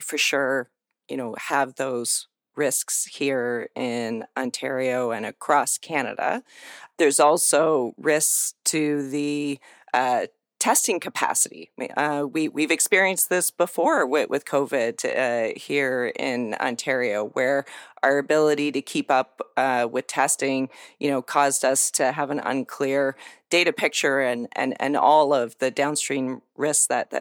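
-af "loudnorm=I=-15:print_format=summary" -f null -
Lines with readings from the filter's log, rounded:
Input Integrated:    -22.7 LUFS
Input True Peak:      -4.4 dBTP
Input LRA:             4.0 LU
Input Threshold:     -32.9 LUFS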